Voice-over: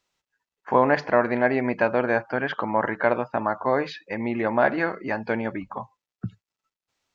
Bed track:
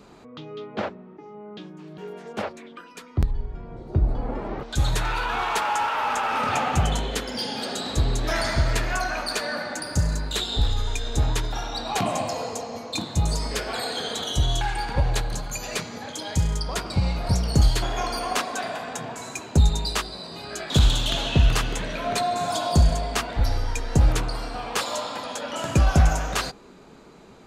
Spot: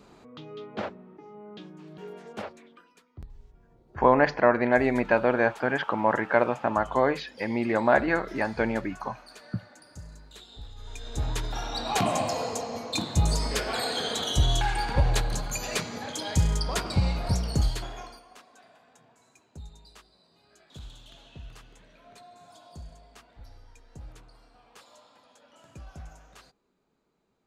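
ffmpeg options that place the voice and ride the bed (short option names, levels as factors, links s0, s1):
-filter_complex "[0:a]adelay=3300,volume=0.944[s0];[1:a]volume=6.68,afade=t=out:st=2.12:d=0.95:silence=0.141254,afade=t=in:st=10.75:d=1.2:silence=0.0891251,afade=t=out:st=16.87:d=1.36:silence=0.0501187[s1];[s0][s1]amix=inputs=2:normalize=0"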